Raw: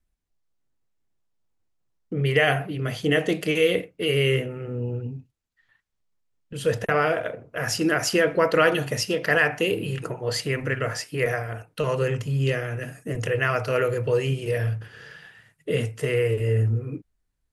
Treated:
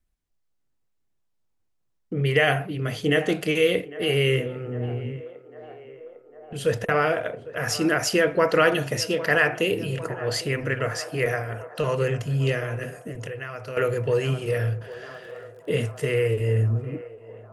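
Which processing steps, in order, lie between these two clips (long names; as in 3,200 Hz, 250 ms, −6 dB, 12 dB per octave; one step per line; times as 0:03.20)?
feedback echo with a band-pass in the loop 802 ms, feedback 80%, band-pass 730 Hz, level −15 dB
0:13.03–0:13.77: downward compressor 6 to 1, threshold −32 dBFS, peak gain reduction 13 dB
0:14.78–0:16.12: surface crackle 26 per second → 92 per second −44 dBFS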